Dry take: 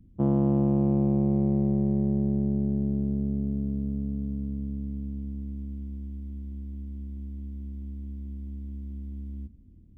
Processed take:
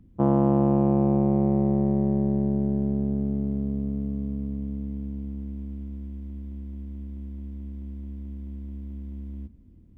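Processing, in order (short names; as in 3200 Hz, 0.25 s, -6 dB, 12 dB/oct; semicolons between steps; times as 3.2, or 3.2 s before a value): bell 1100 Hz +11 dB 2.6 oct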